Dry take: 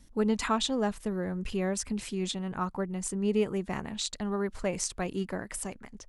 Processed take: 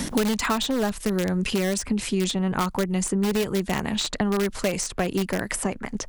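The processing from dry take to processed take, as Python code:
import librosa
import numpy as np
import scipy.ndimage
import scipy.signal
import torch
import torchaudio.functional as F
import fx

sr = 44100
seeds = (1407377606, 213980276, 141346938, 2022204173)

p1 = (np.mod(10.0 ** (23.5 / 20.0) * x + 1.0, 2.0) - 1.0) / 10.0 ** (23.5 / 20.0)
p2 = x + (p1 * librosa.db_to_amplitude(-8.0))
p3 = fx.band_squash(p2, sr, depth_pct=100)
y = p3 * librosa.db_to_amplitude(4.0)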